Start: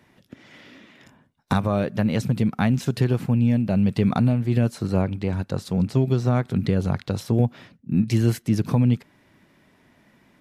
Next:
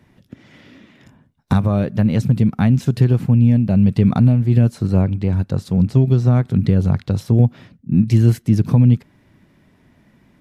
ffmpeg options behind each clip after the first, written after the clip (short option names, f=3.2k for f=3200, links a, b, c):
-af "lowshelf=f=240:g=11.5,volume=-1dB"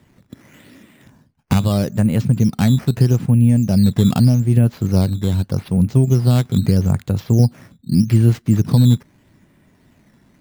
-af "acrusher=samples=8:mix=1:aa=0.000001:lfo=1:lforange=8:lforate=0.81"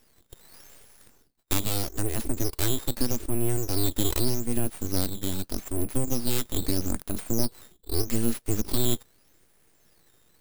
-af "crystalizer=i=4.5:c=0,aeval=exprs='abs(val(0))':c=same,volume=-10dB"